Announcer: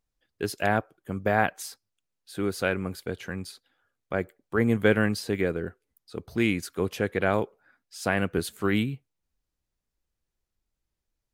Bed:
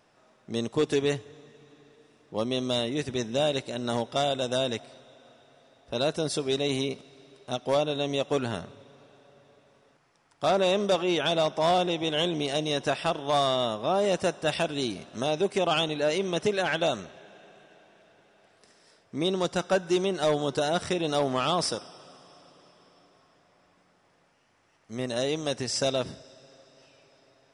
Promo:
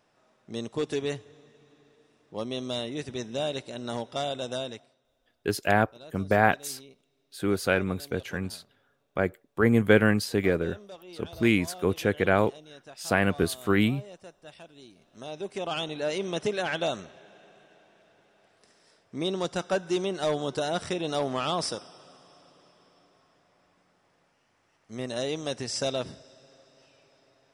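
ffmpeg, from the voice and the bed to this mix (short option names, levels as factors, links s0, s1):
-filter_complex "[0:a]adelay=5050,volume=1.26[s0];[1:a]volume=5.01,afade=t=out:st=4.51:d=0.45:silence=0.149624,afade=t=in:st=14.94:d=1.33:silence=0.11885[s1];[s0][s1]amix=inputs=2:normalize=0"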